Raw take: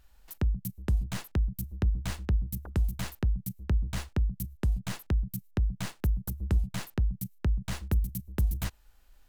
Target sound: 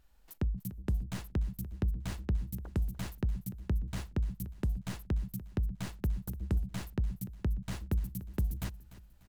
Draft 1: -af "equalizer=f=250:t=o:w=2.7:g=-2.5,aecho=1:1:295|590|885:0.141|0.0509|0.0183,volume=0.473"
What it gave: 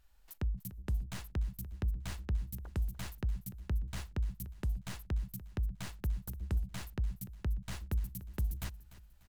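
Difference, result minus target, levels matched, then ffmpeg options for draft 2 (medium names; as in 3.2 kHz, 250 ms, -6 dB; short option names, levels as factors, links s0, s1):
250 Hz band -4.5 dB
-af "equalizer=f=250:t=o:w=2.7:g=5,aecho=1:1:295|590|885:0.141|0.0509|0.0183,volume=0.473"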